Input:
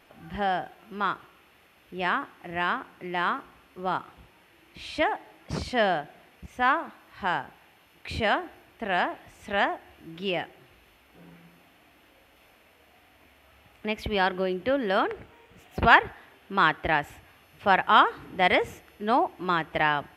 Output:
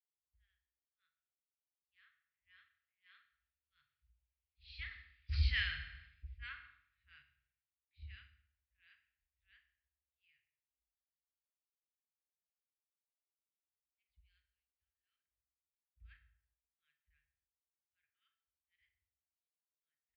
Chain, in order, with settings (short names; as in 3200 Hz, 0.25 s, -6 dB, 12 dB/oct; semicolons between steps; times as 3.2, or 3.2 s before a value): Doppler pass-by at 5.57, 14 m/s, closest 3.3 m; inverse Chebyshev band-stop 200–910 Hz, stop band 60 dB; bell 2900 Hz -12 dB 1 oct; transient shaper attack -6 dB, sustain -1 dB; air absorption 310 m; on a send at -3 dB: reverb RT60 1.1 s, pre-delay 4 ms; on the sum: downsampling 11025 Hz; three-band expander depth 100%; gain +5 dB